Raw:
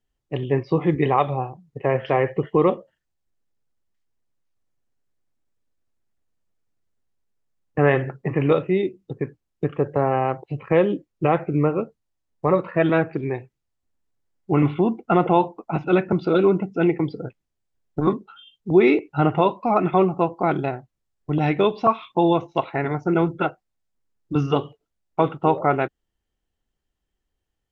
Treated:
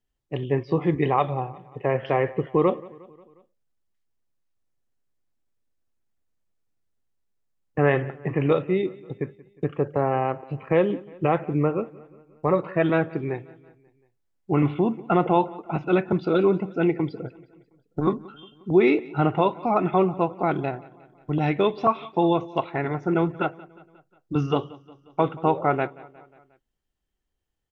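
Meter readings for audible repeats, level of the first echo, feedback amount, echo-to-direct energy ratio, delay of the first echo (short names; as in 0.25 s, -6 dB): 3, -21.5 dB, 57%, -20.0 dB, 0.179 s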